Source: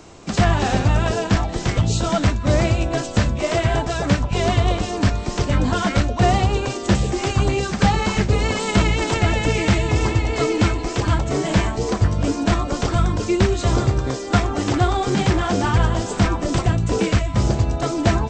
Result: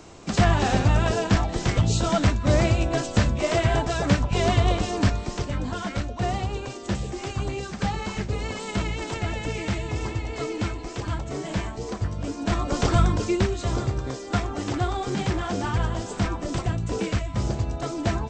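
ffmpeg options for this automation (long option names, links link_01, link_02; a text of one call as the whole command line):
ffmpeg -i in.wav -af "volume=7.5dB,afade=type=out:start_time=5:duration=0.54:silence=0.421697,afade=type=in:start_time=12.37:duration=0.55:silence=0.316228,afade=type=out:start_time=12.92:duration=0.6:silence=0.421697" out.wav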